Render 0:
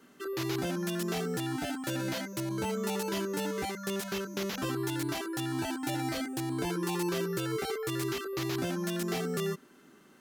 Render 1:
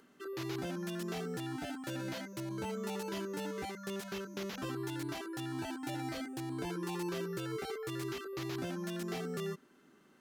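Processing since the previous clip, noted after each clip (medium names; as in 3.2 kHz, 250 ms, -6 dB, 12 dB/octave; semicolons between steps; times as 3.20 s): treble shelf 6.4 kHz -5.5 dB; upward compressor, threshold -56 dBFS; trim -6 dB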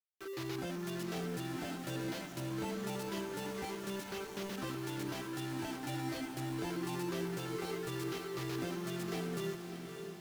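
small samples zeroed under -44.5 dBFS; echo that smears into a reverb 583 ms, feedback 53%, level -7 dB; trim -1 dB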